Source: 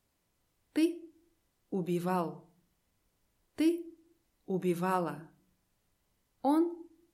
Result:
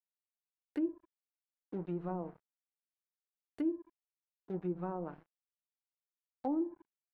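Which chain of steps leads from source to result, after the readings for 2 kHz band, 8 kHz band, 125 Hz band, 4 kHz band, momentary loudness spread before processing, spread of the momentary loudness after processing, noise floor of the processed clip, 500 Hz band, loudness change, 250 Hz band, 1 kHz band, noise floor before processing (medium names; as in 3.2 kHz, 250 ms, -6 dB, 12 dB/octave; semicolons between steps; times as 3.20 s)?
-15.5 dB, under -25 dB, -6.0 dB, under -20 dB, 17 LU, 10 LU, under -85 dBFS, -6.0 dB, -6.5 dB, -6.0 dB, -10.0 dB, -78 dBFS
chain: crossover distortion -46.5 dBFS; low-pass that closes with the level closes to 580 Hz, closed at -26.5 dBFS; treble shelf 3.2 kHz -9.5 dB; trim -4.5 dB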